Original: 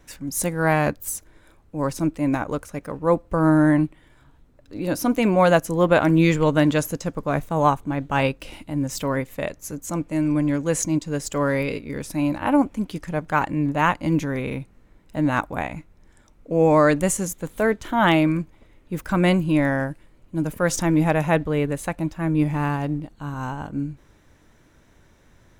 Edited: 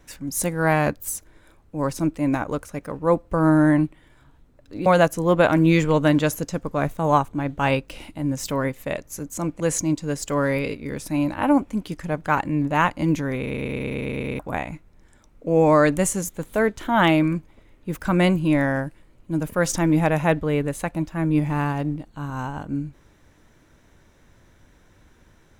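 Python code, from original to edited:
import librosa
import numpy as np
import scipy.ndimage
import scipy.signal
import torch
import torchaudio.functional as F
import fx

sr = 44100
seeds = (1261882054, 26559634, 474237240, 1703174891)

y = fx.edit(x, sr, fx.cut(start_s=4.86, length_s=0.52),
    fx.cut(start_s=10.12, length_s=0.52),
    fx.stutter_over(start_s=14.44, slice_s=0.11, count=9), tone=tone)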